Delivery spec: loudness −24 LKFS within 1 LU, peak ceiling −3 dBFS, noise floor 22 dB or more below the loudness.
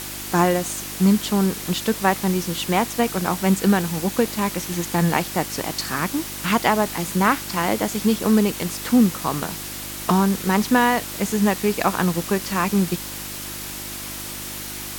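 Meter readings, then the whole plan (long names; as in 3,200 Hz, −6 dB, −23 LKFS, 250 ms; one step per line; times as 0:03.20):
mains hum 50 Hz; hum harmonics up to 350 Hz; level of the hum −38 dBFS; background noise floor −32 dBFS; target noise floor −44 dBFS; integrated loudness −21.5 LKFS; sample peak −3.5 dBFS; target loudness −24.0 LKFS
→ hum removal 50 Hz, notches 7
noise reduction from a noise print 12 dB
level −2.5 dB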